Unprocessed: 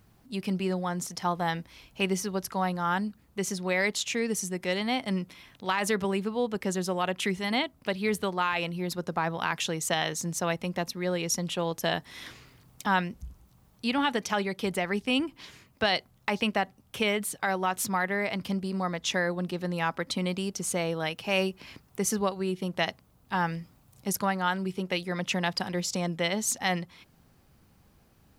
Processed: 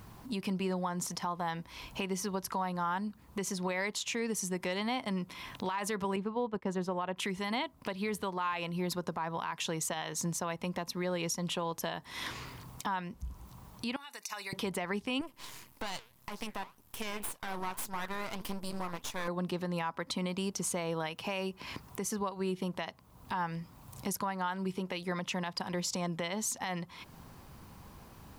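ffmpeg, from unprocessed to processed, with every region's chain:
-filter_complex "[0:a]asettb=1/sr,asplit=3[a][b][c];[a]atrim=end=6.164[d];[b]atrim=start=6.16:end=7.17,asetpts=PTS-STARTPTS,afade=t=in:d=0.004:c=qsin,afade=t=out:st=1.006:d=0.004:c=qsin,agate=range=-33dB:threshold=-32dB:ratio=3:release=100:detection=peak,lowpass=f=1.8k:p=1[e];[c]atrim=start=7.166[f];[d][e]acrossfade=d=0.004:c1=hsin:c2=qsin[g];[g][f]acrossfade=d=0.004:c1=qsin:c2=hsin,asettb=1/sr,asplit=3[h][i][j];[h]atrim=end=13.964[k];[i]atrim=start=13.96:end=14.53,asetpts=PTS-STARTPTS,afade=t=in:d=0.004:c=qsin,afade=t=out:st=0.566:d=0.004:c=qsin,aderivative,acompressor=threshold=-43dB:ratio=4:attack=3.2:release=140:knee=1:detection=peak,asuperstop=centerf=3200:order=12:qfactor=6.6[l];[j]atrim=start=14.526[m];[k][l]acrossfade=d=0.004:c1=hsin:c2=qsin[n];[n][m]acrossfade=d=0.004:c1=qsin:c2=hsin,asettb=1/sr,asplit=3[o][p][q];[o]atrim=end=15.214[r];[p]atrim=start=15.21:end=19.28,asetpts=PTS-STARTPTS,afade=t=in:d=0.004:c=qsin,afade=t=out:st=4.066:d=0.004:c=qsin,equalizer=f=13k:t=o:w=1.5:g=14.5,flanger=delay=1.3:depth=8.1:regen=84:speed=1.8:shape=triangular,aeval=exprs='max(val(0),0)':c=same[s];[q]atrim=start=19.276[t];[r][s]acrossfade=d=0.004:c1=hsin:c2=qsin[u];[u][t]acrossfade=d=0.004:c1=qsin:c2=hsin,equalizer=f=1k:w=3.7:g=9,acompressor=threshold=-45dB:ratio=2.5,alimiter=level_in=9dB:limit=-24dB:level=0:latency=1:release=122,volume=-9dB,volume=8.5dB"

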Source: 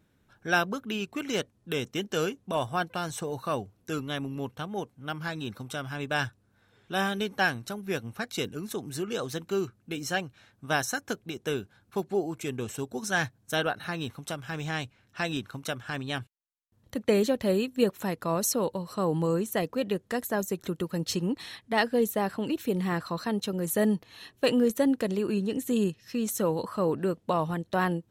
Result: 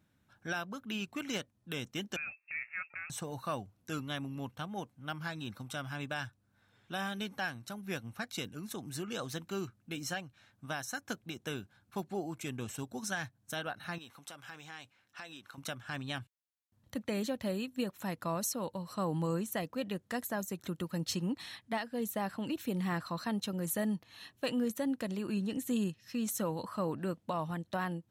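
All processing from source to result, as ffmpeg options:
-filter_complex "[0:a]asettb=1/sr,asplit=3[a][b][c];[a]atrim=end=2.164[d];[b]atrim=start=2.16:end=3.1,asetpts=PTS-STARTPTS,afade=t=in:d=0.004:c=qsin,afade=t=out:st=0.936:d=0.004:c=qsin,highpass=f=280:w=0.5412,highpass=f=280:w=1.3066,acompressor=threshold=-42dB:ratio=1.5:attack=3.2:release=140:knee=1:detection=peak,lowpass=f=2.5k:t=q:w=0.5098,lowpass=f=2.5k:t=q:w=0.6013,lowpass=f=2.5k:t=q:w=0.9,lowpass=f=2.5k:t=q:w=2.563,afreqshift=-2900[e];[c]atrim=start=3.096[f];[d][e]acrossfade=d=0.004:c1=hsin:c2=qsin[g];[g][f]acrossfade=d=0.004:c1=qsin:c2=hsin,asettb=1/sr,asplit=3[h][i][j];[h]atrim=end=13.984[k];[i]atrim=start=13.98:end=15.58,asetpts=PTS-STARTPTS,afade=t=in:d=0.004:c=qsin,afade=t=out:st=1.596:d=0.004:c=qsin,bandreject=f=630:w=11,acompressor=threshold=-37dB:ratio=6:attack=3.2:release=140:knee=1:detection=peak,bass=f=250:g=-14,treble=f=4k:g=0[l];[j]atrim=start=15.576[m];[k][l]acrossfade=d=0.004:c1=hsin:c2=qsin[n];[n][m]acrossfade=d=0.004:c1=qsin:c2=hsin,highpass=57,equalizer=f=420:w=2.8:g=-8.5,alimiter=limit=-20.5dB:level=0:latency=1:release=395,volume=-4dB"

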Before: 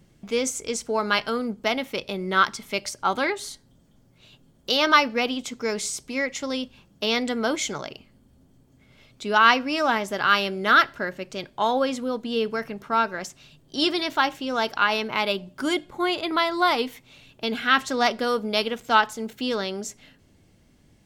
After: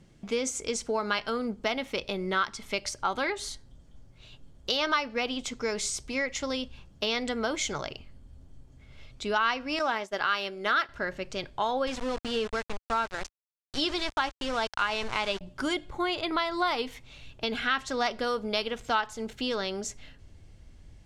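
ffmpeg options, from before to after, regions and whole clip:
-filter_complex "[0:a]asettb=1/sr,asplit=3[a][b][c];[a]atrim=end=9.794[d];[b]atrim=start=9.79:end=10.89,asetpts=PTS-STARTPTS,afade=t=in:d=0.004:c=qsin,afade=t=out:st=1.096:d=0.004:c=qsin,highpass=230,agate=range=-33dB:threshold=-28dB:ratio=3:release=100:detection=peak[e];[c]atrim=start=10.886[f];[d][e]acrossfade=d=0.004:c1=hsin:c2=qsin[g];[g][f]acrossfade=d=0.004:c1=qsin:c2=hsin,asettb=1/sr,asplit=3[h][i][j];[h]atrim=end=11.874[k];[i]atrim=start=11.87:end=15.41,asetpts=PTS-STARTPTS,afade=t=in:d=0.004:c=qsin,afade=t=out:st=3.536:d=0.004:c=qsin,aeval=exprs='val(0)*gte(abs(val(0)),0.0299)':c=same,lowpass=8.3k[l];[j]atrim=start=15.406[m];[k][l]acrossfade=d=0.004:c1=hsin:c2=qsin[n];[n][m]acrossfade=d=0.004:c1=qsin:c2=hsin,lowpass=8.8k,asubboost=boost=6:cutoff=77,acompressor=threshold=-27dB:ratio=2.5"

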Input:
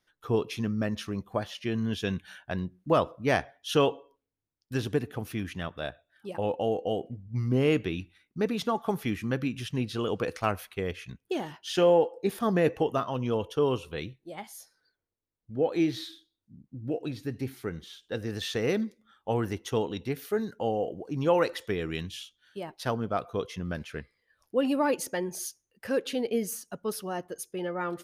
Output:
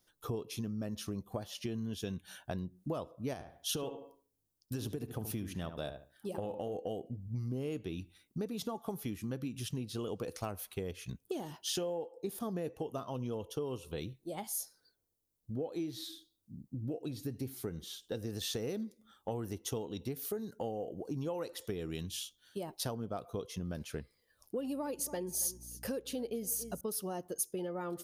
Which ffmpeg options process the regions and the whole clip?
-filter_complex "[0:a]asettb=1/sr,asplit=3[a][b][c];[a]atrim=end=3.334[d];[b]atrim=start=3.33:end=6.76,asetpts=PTS-STARTPTS,afade=t=in:d=0.004:c=qsin,afade=t=out:st=3.426:d=0.004:c=qsin,acompressor=threshold=-26dB:ratio=6:attack=3.2:release=140:knee=1:detection=peak,asplit=2[e][f];[f]adelay=73,lowpass=f=1.8k:p=1,volume=-9dB,asplit=2[g][h];[h]adelay=73,lowpass=f=1.8k:p=1,volume=0.23,asplit=2[i][j];[j]adelay=73,lowpass=f=1.8k:p=1,volume=0.23[k];[e][g][i][k]amix=inputs=4:normalize=0,atrim=end_sample=151263[l];[c]atrim=start=6.756[m];[d][l]acrossfade=d=0.004:c1=hsin:c2=qsin[n];[n][m]acrossfade=d=0.004:c1=qsin:c2=hsin,asettb=1/sr,asplit=3[o][p][q];[o]atrim=end=24.584[r];[p]atrim=start=24.58:end=26.81,asetpts=PTS-STARTPTS,afade=t=in:d=0.004:c=qsin,afade=t=out:st=2.226:d=0.004:c=qsin,aeval=exprs='val(0)+0.00178*(sin(2*PI*60*n/s)+sin(2*PI*2*60*n/s)/2+sin(2*PI*3*60*n/s)/3+sin(2*PI*4*60*n/s)/4+sin(2*PI*5*60*n/s)/5)':c=same,aecho=1:1:279:0.0944,atrim=end_sample=98343[s];[q]atrim=start=26.806[t];[r][s]acrossfade=d=0.004:c1=hsin:c2=qsin[u];[u][t]acrossfade=d=0.004:c1=qsin:c2=hsin,equalizer=f=1.9k:w=0.9:g=-10,acompressor=threshold=-39dB:ratio=6,highshelf=f=7.2k:g=10,volume=3dB"

